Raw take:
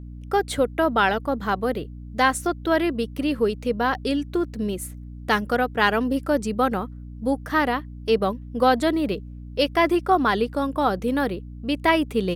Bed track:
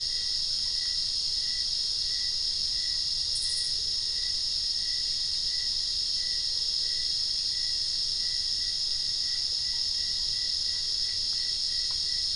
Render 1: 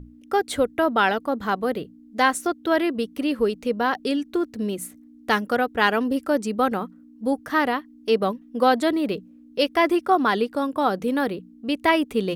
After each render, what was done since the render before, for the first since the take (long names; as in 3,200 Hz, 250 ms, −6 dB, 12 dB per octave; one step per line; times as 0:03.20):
mains-hum notches 60/120/180 Hz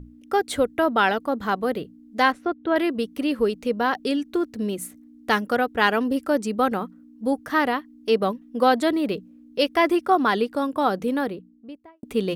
0:02.32–0:02.76: high-frequency loss of the air 360 metres
0:10.94–0:12.03: fade out and dull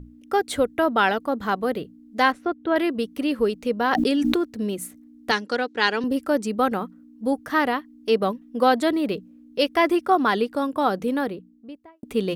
0:03.91–0:04.38: envelope flattener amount 100%
0:05.31–0:06.04: loudspeaker in its box 270–8,300 Hz, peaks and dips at 670 Hz −9 dB, 1,200 Hz −6 dB, 4,300 Hz +9 dB, 6,100 Hz +5 dB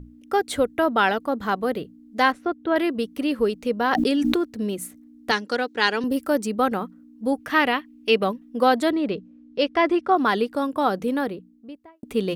0:05.47–0:06.47: high-shelf EQ 11,000 Hz +10.5 dB
0:07.40–0:08.24: parametric band 2,600 Hz +10 dB 0.78 octaves
0:08.90–0:10.17: high-frequency loss of the air 100 metres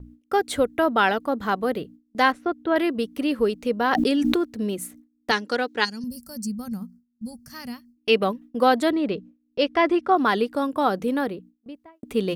noise gate with hold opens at −38 dBFS
0:05.84–0:07.97: gain on a spectral selection 250–4,200 Hz −22 dB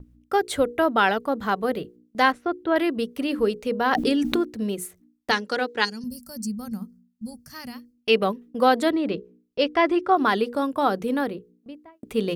mains-hum notches 60/120/180/240/300/360/420/480 Hz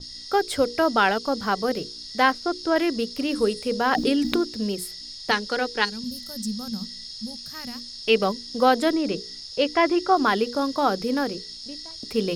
mix in bed track −9.5 dB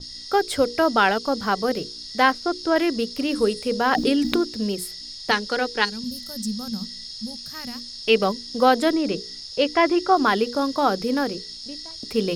level +1.5 dB